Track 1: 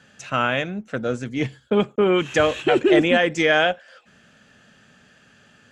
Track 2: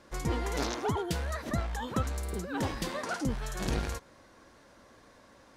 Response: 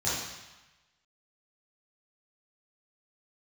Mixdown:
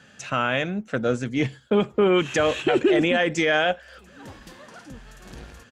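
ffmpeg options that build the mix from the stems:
-filter_complex "[0:a]volume=1.5dB,asplit=2[a][b];[1:a]adelay=1650,volume=-10.5dB[c];[b]apad=whole_len=318022[d];[c][d]sidechaincompress=threshold=-35dB:ratio=8:attack=5.9:release=328[e];[a][e]amix=inputs=2:normalize=0,alimiter=limit=-11dB:level=0:latency=1:release=54"

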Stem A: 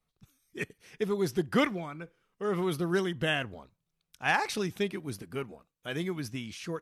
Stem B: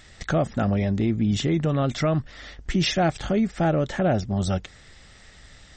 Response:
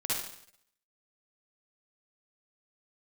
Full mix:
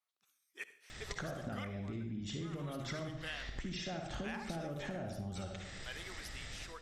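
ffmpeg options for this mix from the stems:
-filter_complex "[0:a]highpass=830,volume=-7.5dB,asplit=2[a][b];[b]volume=-19.5dB[c];[1:a]acompressor=threshold=-32dB:ratio=6,adelay=900,volume=-3dB,asplit=2[d][e];[e]volume=-5dB[f];[2:a]atrim=start_sample=2205[g];[c][f]amix=inputs=2:normalize=0[h];[h][g]afir=irnorm=-1:irlink=0[i];[a][d][i]amix=inputs=3:normalize=0,acompressor=threshold=-39dB:ratio=5"

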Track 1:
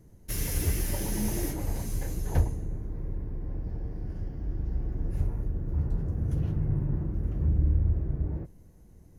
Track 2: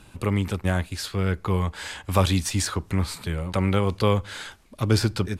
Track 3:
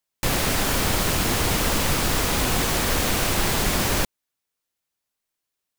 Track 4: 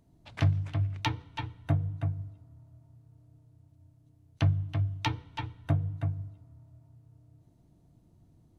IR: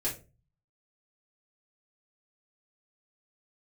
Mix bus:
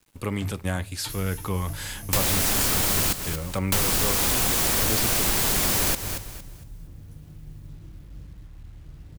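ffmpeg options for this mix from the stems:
-filter_complex "[0:a]equalizer=f=400:t=o:w=1.2:g=-6.5,acompressor=threshold=-31dB:ratio=16,aeval=exprs='sgn(val(0))*max(abs(val(0))-0.00119,0)':c=same,adelay=800,volume=-10dB,asplit=3[a][b][c];[b]volume=-7dB[d];[c]volume=-16.5dB[e];[1:a]agate=range=-14dB:threshold=-38dB:ratio=16:detection=peak,volume=-4dB,asplit=2[f][g];[g]volume=-20.5dB[h];[2:a]adelay=1900,volume=2dB,asplit=3[i][j][k];[i]atrim=end=3.13,asetpts=PTS-STARTPTS,afade=t=out:st=3.126:d=0.004:c=hsin[l];[j]atrim=start=3.13:end=3.72,asetpts=PTS-STARTPTS,volume=0[m];[k]atrim=start=3.72,asetpts=PTS-STARTPTS,afade=t=in:d=0.004:c=hsin[n];[l][m][n]concat=n=3:v=0:a=1,asplit=2[o][p];[p]volume=-14dB[q];[3:a]volume=-12dB[r];[4:a]atrim=start_sample=2205[s];[d][h]amix=inputs=2:normalize=0[t];[t][s]afir=irnorm=-1:irlink=0[u];[e][q]amix=inputs=2:normalize=0,aecho=0:1:229|458|687|916:1|0.29|0.0841|0.0244[v];[a][f][o][r][u][v]amix=inputs=6:normalize=0,highshelf=f=5.6k:g=10,acrusher=bits=9:mix=0:aa=0.000001,acompressor=threshold=-20dB:ratio=4"

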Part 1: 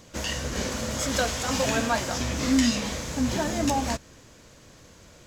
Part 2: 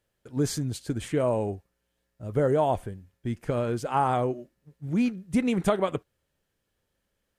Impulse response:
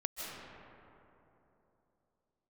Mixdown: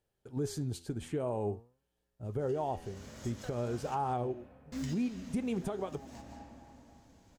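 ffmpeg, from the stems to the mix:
-filter_complex "[0:a]acrusher=bits=6:mode=log:mix=0:aa=0.000001,adelay=2250,volume=-15dB,asplit=3[a][b][c];[a]atrim=end=3.96,asetpts=PTS-STARTPTS,afade=t=out:st=3.956:d=0.004:c=hsin[d];[b]atrim=start=3.96:end=4.72,asetpts=PTS-STARTPTS,volume=0[e];[c]atrim=start=4.72,asetpts=PTS-STARTPTS,afade=t=in:d=0.004:c=hsin[f];[d][e][f]concat=n=3:v=0:a=1,asplit=2[g][h];[h]volume=-6dB[i];[1:a]equalizer=f=400:t=o:w=0.33:g=7,equalizer=f=800:t=o:w=0.33:g=7,equalizer=f=2k:t=o:w=0.33:g=-4,volume=-3dB,asplit=2[j][k];[k]apad=whole_len=331389[l];[g][l]sidechaincompress=threshold=-42dB:ratio=8:attack=11:release=425[m];[2:a]atrim=start_sample=2205[n];[i][n]afir=irnorm=-1:irlink=0[o];[m][j][o]amix=inputs=3:normalize=0,bass=f=250:g=4,treble=f=4k:g=0,flanger=delay=6.3:depth=6.6:regen=87:speed=0.51:shape=triangular,alimiter=level_in=1.5dB:limit=-24dB:level=0:latency=1:release=329,volume=-1.5dB"

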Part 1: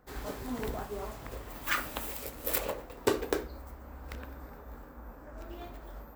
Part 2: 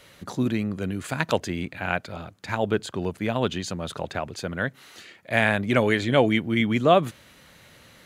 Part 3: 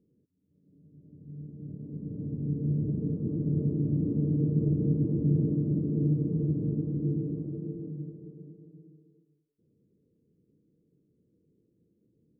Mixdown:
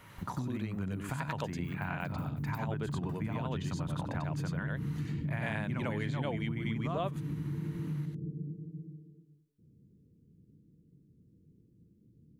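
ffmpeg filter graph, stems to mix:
-filter_complex "[0:a]aeval=exprs='val(0)*pow(10,-33*if(lt(mod(5.5*n/s,1),2*abs(5.5)/1000),1-mod(5.5*n/s,1)/(2*abs(5.5)/1000),(mod(5.5*n/s,1)-2*abs(5.5)/1000)/(1-2*abs(5.5)/1000))/20)':c=same,volume=-6.5dB[a];[1:a]equalizer=f=970:w=6.7:g=6.5,volume=-1.5dB,asplit=2[b][c];[c]volume=-8.5dB[d];[2:a]acompressor=threshold=-37dB:ratio=6,asubboost=boost=4.5:cutoff=220,volume=-0.5dB[e];[a][b]amix=inputs=2:normalize=0,equalizer=f=125:t=o:w=1:g=8,equalizer=f=500:t=o:w=1:g=-10,equalizer=f=1k:t=o:w=1:g=4,equalizer=f=4k:t=o:w=1:g=-11,equalizer=f=8k:t=o:w=1:g=-6,acompressor=threshold=-30dB:ratio=5,volume=0dB[f];[d]aecho=0:1:94:1[g];[e][f][g]amix=inputs=3:normalize=0,acompressor=threshold=-34dB:ratio=2.5"

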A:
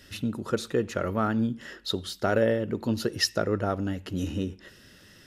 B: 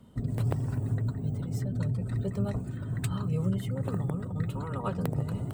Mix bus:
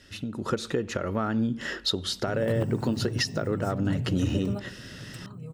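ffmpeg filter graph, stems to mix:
-filter_complex "[0:a]lowpass=9.1k,acompressor=threshold=-30dB:ratio=6,volume=-1.5dB,asplit=2[a][b];[1:a]highpass=110,adelay=2100,volume=-9dB[c];[b]apad=whole_len=336733[d];[c][d]sidechaingate=range=-12dB:threshold=-46dB:ratio=16:detection=peak[e];[a][e]amix=inputs=2:normalize=0,dynaudnorm=f=130:g=7:m=11dB,alimiter=limit=-14.5dB:level=0:latency=1:release=452"

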